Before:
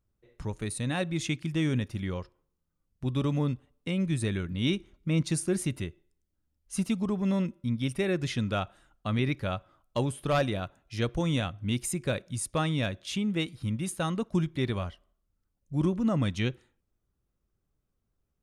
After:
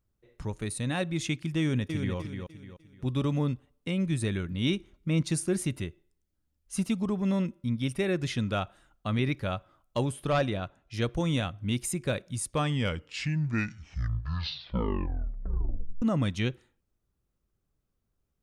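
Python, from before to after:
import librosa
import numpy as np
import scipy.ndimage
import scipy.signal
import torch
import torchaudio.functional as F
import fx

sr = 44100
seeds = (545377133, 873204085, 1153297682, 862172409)

y = fx.echo_throw(x, sr, start_s=1.59, length_s=0.57, ms=300, feedback_pct=35, wet_db=-6.0)
y = fx.air_absorb(y, sr, metres=51.0, at=(10.29, 10.94))
y = fx.edit(y, sr, fx.tape_stop(start_s=12.43, length_s=3.59), tone=tone)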